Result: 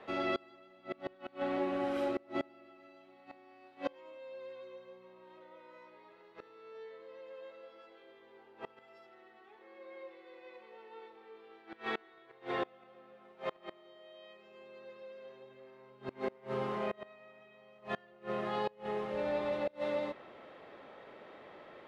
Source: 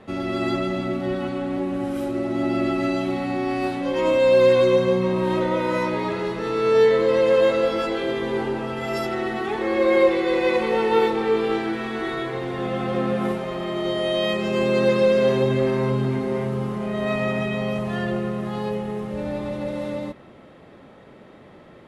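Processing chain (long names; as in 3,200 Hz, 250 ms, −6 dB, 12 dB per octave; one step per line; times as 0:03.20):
three-way crossover with the lows and the highs turned down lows −16 dB, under 380 Hz, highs −16 dB, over 5,000 Hz
gate with flip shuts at −21 dBFS, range −28 dB
level −2.5 dB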